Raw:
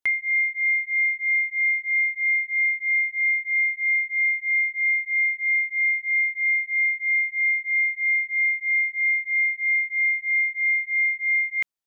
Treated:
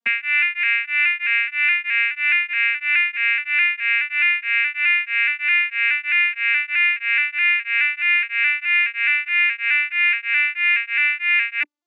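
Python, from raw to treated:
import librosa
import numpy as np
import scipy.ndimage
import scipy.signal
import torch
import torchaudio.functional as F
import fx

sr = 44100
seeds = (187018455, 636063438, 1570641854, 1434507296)

y = fx.vocoder_arp(x, sr, chord='major triad', root=58, every_ms=211)
y = y * librosa.db_to_amplitude(3.5)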